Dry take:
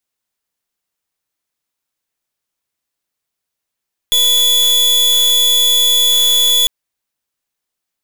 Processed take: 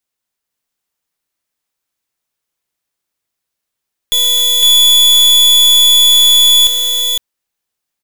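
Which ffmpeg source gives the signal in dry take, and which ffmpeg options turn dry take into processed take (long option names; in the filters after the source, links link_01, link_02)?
-f lavfi -i "aevalsrc='0.266*(2*lt(mod(3430*t,1),0.41)-1)':duration=2.55:sample_rate=44100"
-af "aecho=1:1:507:0.708"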